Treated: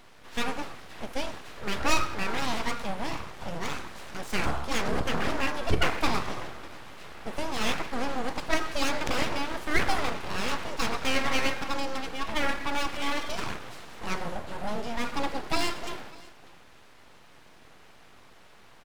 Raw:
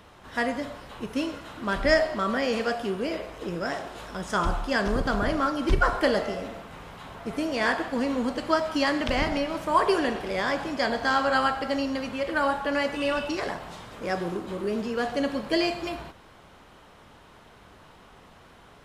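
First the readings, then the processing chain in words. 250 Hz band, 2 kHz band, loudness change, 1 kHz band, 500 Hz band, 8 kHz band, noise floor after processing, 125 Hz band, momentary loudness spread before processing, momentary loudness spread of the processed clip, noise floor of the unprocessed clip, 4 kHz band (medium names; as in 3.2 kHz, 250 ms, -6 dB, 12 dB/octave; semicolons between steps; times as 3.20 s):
-6.5 dB, -3.0 dB, -4.0 dB, -3.5 dB, -7.5 dB, +6.0 dB, -52 dBFS, -1.0 dB, 12 LU, 12 LU, -52 dBFS, +0.5 dB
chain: delay 595 ms -22 dB; full-wave rectifier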